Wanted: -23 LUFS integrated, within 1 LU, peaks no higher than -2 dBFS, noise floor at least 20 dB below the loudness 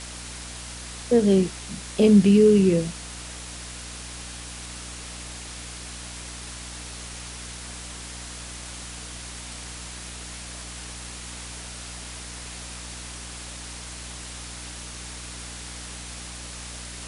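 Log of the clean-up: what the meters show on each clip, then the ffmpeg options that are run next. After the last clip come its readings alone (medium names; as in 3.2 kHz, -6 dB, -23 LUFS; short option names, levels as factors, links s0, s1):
hum 60 Hz; highest harmonic 300 Hz; hum level -40 dBFS; noise floor -38 dBFS; noise floor target -48 dBFS; loudness -27.5 LUFS; peak level -6.5 dBFS; loudness target -23.0 LUFS
-> -af "bandreject=f=60:t=h:w=4,bandreject=f=120:t=h:w=4,bandreject=f=180:t=h:w=4,bandreject=f=240:t=h:w=4,bandreject=f=300:t=h:w=4"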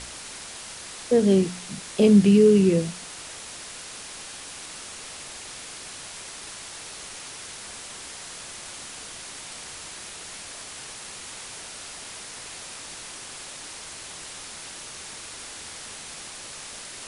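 hum not found; noise floor -40 dBFS; noise floor target -48 dBFS
-> -af "afftdn=nr=8:nf=-40"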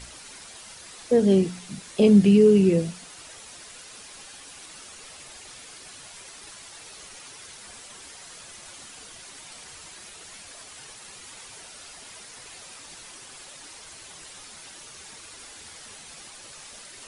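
noise floor -45 dBFS; loudness -19.0 LUFS; peak level -7.0 dBFS; loudness target -23.0 LUFS
-> -af "volume=0.631"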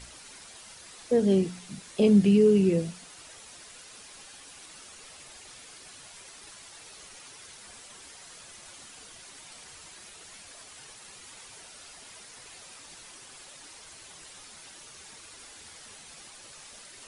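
loudness -23.0 LUFS; peak level -11.0 dBFS; noise floor -49 dBFS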